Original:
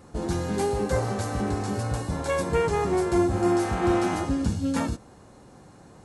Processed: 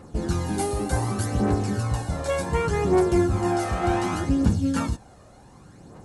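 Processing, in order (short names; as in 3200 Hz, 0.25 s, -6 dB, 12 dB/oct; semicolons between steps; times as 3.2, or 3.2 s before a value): phaser 0.67 Hz, delay 1.7 ms, feedback 47%; 0.46–1.26 thirty-one-band EQ 315 Hz +10 dB, 500 Hz -7 dB, 1600 Hz -3 dB, 10000 Hz +10 dB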